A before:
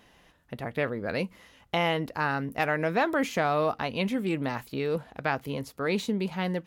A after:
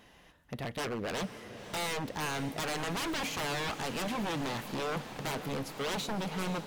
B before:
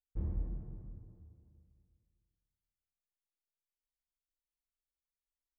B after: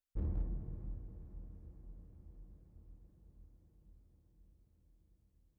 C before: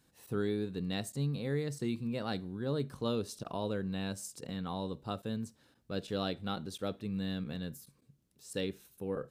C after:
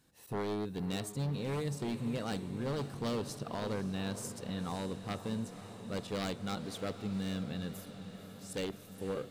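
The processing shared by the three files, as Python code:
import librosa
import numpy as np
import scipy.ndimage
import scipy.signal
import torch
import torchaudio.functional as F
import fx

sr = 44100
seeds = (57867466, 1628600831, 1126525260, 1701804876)

y = 10.0 ** (-29.5 / 20.0) * (np.abs((x / 10.0 ** (-29.5 / 20.0) + 3.0) % 4.0 - 2.0) - 1.0)
y = fx.echo_diffused(y, sr, ms=526, feedback_pct=73, wet_db=-12.0)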